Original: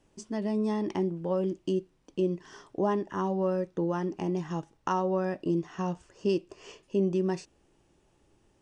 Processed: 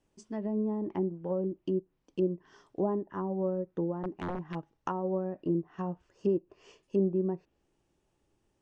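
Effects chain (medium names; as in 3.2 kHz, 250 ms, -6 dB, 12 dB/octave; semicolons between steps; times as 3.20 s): 3.97–4.75 s: integer overflow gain 23.5 dB; low-pass that closes with the level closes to 710 Hz, closed at -25.5 dBFS; upward expansion 1.5:1, over -41 dBFS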